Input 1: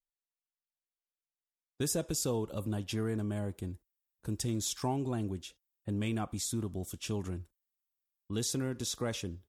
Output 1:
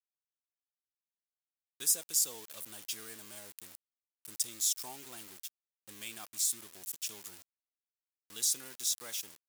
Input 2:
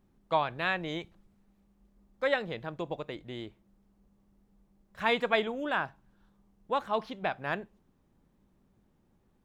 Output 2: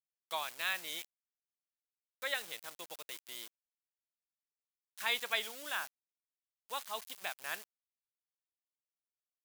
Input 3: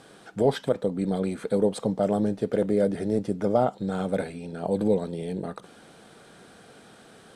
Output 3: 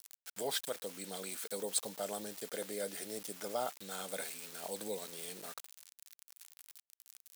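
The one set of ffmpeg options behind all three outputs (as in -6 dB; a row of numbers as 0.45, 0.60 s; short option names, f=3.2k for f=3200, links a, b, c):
-af "aeval=exprs='val(0)*gte(abs(val(0)),0.00794)':c=same,aderivative,volume=6.5dB"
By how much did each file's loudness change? +2.0, -6.5, -13.5 LU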